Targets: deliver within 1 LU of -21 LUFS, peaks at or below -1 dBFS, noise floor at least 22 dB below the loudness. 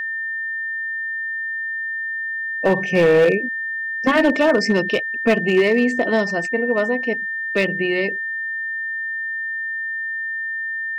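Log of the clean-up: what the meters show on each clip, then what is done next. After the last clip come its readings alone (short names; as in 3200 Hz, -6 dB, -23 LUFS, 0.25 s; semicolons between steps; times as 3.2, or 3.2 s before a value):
clipped 1.4%; flat tops at -9.5 dBFS; steady tone 1800 Hz; tone level -23 dBFS; loudness -20.0 LUFS; peak -9.5 dBFS; loudness target -21.0 LUFS
-> clip repair -9.5 dBFS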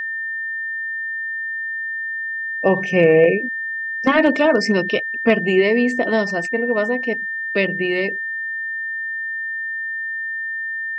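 clipped 0.0%; steady tone 1800 Hz; tone level -23 dBFS
-> notch 1800 Hz, Q 30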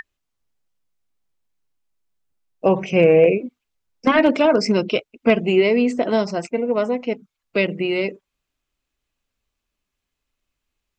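steady tone none; loudness -19.0 LUFS; peak -3.0 dBFS; loudness target -21.0 LUFS
-> gain -2 dB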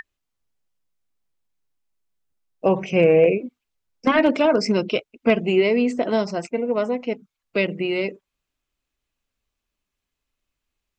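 loudness -21.0 LUFS; peak -5.0 dBFS; noise floor -83 dBFS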